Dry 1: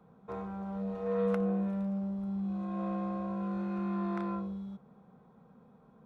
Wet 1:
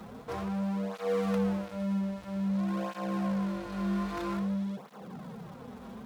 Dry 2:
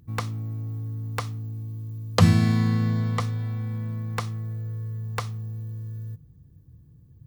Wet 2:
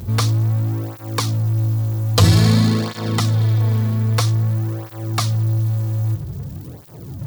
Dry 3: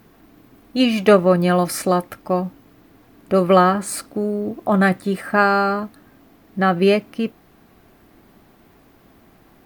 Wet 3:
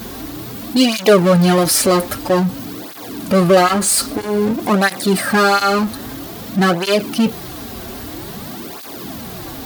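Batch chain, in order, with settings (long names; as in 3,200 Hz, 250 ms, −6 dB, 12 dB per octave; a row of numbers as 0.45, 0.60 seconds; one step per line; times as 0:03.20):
high shelf with overshoot 3,000 Hz +6.5 dB, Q 1.5
power curve on the samples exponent 0.5
through-zero flanger with one copy inverted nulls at 0.51 Hz, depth 7 ms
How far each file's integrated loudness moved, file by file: +2.0, +8.5, +3.5 LU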